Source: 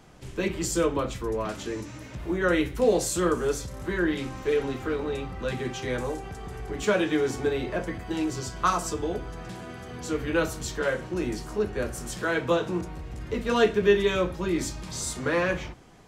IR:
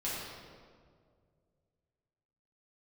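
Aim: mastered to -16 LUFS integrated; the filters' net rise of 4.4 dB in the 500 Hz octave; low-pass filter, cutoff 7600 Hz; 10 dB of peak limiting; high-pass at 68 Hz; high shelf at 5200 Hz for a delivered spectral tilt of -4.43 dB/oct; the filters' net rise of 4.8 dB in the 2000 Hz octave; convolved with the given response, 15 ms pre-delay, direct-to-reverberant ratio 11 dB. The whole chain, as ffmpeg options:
-filter_complex "[0:a]highpass=68,lowpass=7.6k,equalizer=f=500:t=o:g=5,equalizer=f=2k:t=o:g=7,highshelf=f=5.2k:g=-6.5,alimiter=limit=-15dB:level=0:latency=1,asplit=2[a][b];[1:a]atrim=start_sample=2205,adelay=15[c];[b][c]afir=irnorm=-1:irlink=0,volume=-16dB[d];[a][d]amix=inputs=2:normalize=0,volume=10.5dB"

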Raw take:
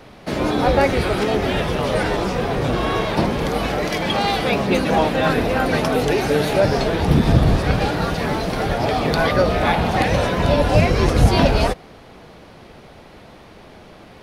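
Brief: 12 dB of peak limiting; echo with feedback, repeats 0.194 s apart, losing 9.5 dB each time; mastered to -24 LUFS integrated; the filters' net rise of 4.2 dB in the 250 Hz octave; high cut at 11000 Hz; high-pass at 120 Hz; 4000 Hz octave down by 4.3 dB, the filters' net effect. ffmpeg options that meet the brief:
-af "highpass=120,lowpass=11k,equalizer=f=250:t=o:g=6,equalizer=f=4k:t=o:g=-5.5,alimiter=limit=-13dB:level=0:latency=1,aecho=1:1:194|388|582|776:0.335|0.111|0.0365|0.012,volume=-2.5dB"

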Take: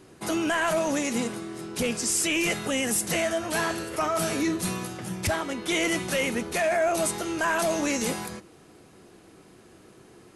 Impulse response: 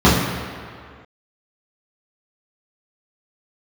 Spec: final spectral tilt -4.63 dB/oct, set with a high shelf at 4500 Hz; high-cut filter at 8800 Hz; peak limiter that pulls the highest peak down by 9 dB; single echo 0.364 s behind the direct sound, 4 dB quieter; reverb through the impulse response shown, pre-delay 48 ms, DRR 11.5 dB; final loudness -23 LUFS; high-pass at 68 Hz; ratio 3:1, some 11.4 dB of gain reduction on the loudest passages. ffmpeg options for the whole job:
-filter_complex "[0:a]highpass=68,lowpass=8.8k,highshelf=f=4.5k:g=-7.5,acompressor=threshold=-38dB:ratio=3,alimiter=level_in=11dB:limit=-24dB:level=0:latency=1,volume=-11dB,aecho=1:1:364:0.631,asplit=2[a][b];[1:a]atrim=start_sample=2205,adelay=48[c];[b][c]afir=irnorm=-1:irlink=0,volume=-38.5dB[d];[a][d]amix=inputs=2:normalize=0,volume=17.5dB"

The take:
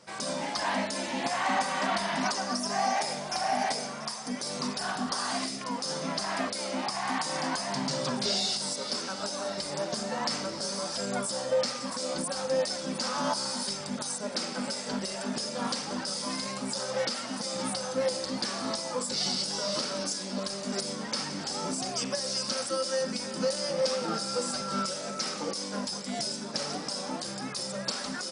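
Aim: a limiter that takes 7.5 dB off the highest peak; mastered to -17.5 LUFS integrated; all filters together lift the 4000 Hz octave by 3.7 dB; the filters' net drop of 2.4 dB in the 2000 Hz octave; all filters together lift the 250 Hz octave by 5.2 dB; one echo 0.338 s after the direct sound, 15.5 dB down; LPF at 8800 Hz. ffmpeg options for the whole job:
-af "lowpass=8.8k,equalizer=f=250:t=o:g=6,equalizer=f=2k:t=o:g=-4.5,equalizer=f=4k:t=o:g=6,alimiter=limit=-19.5dB:level=0:latency=1,aecho=1:1:338:0.168,volume=12dB"

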